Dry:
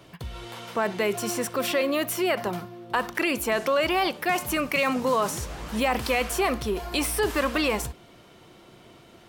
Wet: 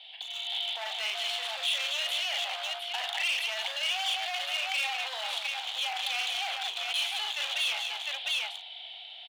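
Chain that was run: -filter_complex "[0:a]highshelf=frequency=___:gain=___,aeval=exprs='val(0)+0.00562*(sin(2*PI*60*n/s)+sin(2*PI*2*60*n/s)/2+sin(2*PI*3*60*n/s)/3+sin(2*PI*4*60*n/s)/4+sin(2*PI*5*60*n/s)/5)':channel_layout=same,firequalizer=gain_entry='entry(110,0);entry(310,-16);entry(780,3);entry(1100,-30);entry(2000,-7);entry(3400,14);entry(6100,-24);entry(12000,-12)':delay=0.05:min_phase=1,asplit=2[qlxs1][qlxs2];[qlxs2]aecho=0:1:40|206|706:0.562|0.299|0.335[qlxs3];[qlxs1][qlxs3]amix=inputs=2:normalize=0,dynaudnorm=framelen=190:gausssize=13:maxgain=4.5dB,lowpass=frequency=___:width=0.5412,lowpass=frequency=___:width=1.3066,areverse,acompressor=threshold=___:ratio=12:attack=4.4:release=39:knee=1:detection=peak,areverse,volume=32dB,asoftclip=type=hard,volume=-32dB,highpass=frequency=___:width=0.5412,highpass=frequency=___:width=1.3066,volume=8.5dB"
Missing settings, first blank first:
2.6k, -9, 10k, 10k, -32dB, 1k, 1k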